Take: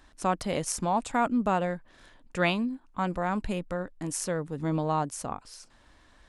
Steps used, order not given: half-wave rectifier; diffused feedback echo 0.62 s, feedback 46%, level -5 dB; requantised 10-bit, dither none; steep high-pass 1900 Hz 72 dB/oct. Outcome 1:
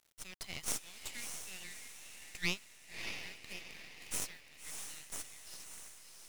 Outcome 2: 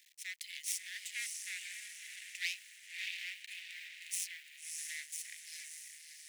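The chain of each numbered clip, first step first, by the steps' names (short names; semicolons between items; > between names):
steep high-pass > requantised > diffused feedback echo > half-wave rectifier; requantised > diffused feedback echo > half-wave rectifier > steep high-pass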